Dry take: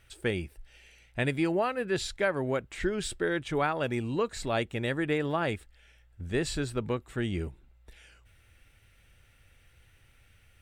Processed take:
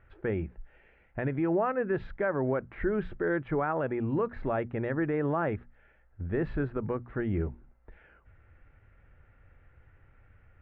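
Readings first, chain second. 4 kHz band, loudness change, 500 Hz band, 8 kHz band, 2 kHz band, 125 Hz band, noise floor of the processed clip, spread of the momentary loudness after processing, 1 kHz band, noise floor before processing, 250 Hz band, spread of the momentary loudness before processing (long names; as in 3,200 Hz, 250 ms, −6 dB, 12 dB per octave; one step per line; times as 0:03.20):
below −20 dB, −0.5 dB, +0.5 dB, below −35 dB, −3.5 dB, +0.5 dB, −63 dBFS, 6 LU, −0.5 dB, −62 dBFS, +1.0 dB, 6 LU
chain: brickwall limiter −22.5 dBFS, peak gain reduction 7 dB
low-pass filter 1,700 Hz 24 dB per octave
mains-hum notches 60/120/180/240 Hz
level +3.5 dB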